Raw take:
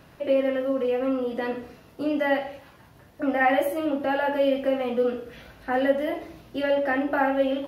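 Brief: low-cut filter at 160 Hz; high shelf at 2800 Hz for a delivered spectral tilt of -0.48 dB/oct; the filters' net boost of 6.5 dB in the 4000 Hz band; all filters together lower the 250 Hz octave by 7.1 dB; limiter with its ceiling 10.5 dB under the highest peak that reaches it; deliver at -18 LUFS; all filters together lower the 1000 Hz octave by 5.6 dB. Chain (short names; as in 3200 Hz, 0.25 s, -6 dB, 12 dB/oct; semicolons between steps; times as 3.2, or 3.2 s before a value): HPF 160 Hz; bell 250 Hz -7 dB; bell 1000 Hz -8.5 dB; high shelf 2800 Hz +6.5 dB; bell 4000 Hz +5.5 dB; gain +14 dB; limiter -9 dBFS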